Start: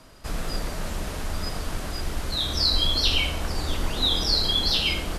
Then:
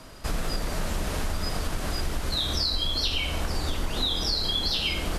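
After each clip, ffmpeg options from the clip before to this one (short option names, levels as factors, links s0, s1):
-af "acompressor=threshold=0.0398:ratio=6,volume=1.68"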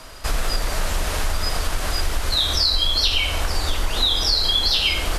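-af "equalizer=f=190:w=0.58:g=-11,volume=2.51"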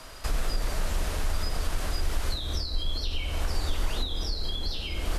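-filter_complex "[0:a]acrossover=split=470[s0][s1];[s1]acompressor=threshold=0.0282:ratio=6[s2];[s0][s2]amix=inputs=2:normalize=0,volume=0.596"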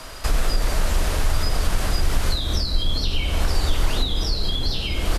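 -filter_complex "[0:a]asplit=8[s0][s1][s2][s3][s4][s5][s6][s7];[s1]adelay=438,afreqshift=-70,volume=0.15[s8];[s2]adelay=876,afreqshift=-140,volume=0.0955[s9];[s3]adelay=1314,afreqshift=-210,volume=0.061[s10];[s4]adelay=1752,afreqshift=-280,volume=0.0394[s11];[s5]adelay=2190,afreqshift=-350,volume=0.0251[s12];[s6]adelay=2628,afreqshift=-420,volume=0.016[s13];[s7]adelay=3066,afreqshift=-490,volume=0.0102[s14];[s0][s8][s9][s10][s11][s12][s13][s14]amix=inputs=8:normalize=0,volume=2.37"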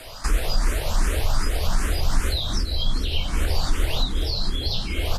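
-filter_complex "[0:a]asplit=2[s0][s1];[s1]afreqshift=2.6[s2];[s0][s2]amix=inputs=2:normalize=1,volume=1.19"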